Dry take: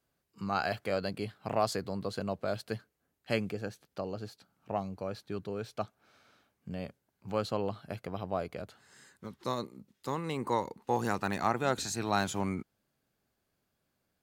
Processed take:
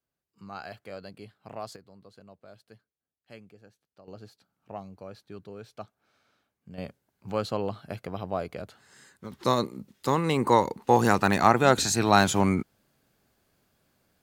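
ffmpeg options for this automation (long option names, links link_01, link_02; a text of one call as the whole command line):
ffmpeg -i in.wav -af "asetnsamples=nb_out_samples=441:pad=0,asendcmd='1.76 volume volume -17dB;4.08 volume volume -5.5dB;6.78 volume volume 3dB;9.32 volume volume 10dB',volume=-9dB" out.wav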